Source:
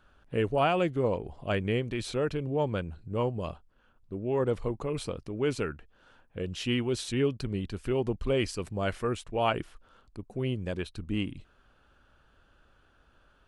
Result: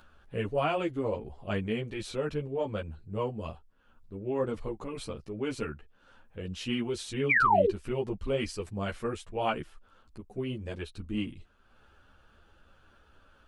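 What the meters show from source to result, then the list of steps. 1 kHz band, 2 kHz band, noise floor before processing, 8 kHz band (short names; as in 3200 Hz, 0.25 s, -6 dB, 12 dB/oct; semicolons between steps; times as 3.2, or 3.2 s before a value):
+2.5 dB, +4.5 dB, -65 dBFS, -3.0 dB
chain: upward compressor, threshold -49 dBFS; painted sound fall, 7.29–7.71, 350–2500 Hz -20 dBFS; ensemble effect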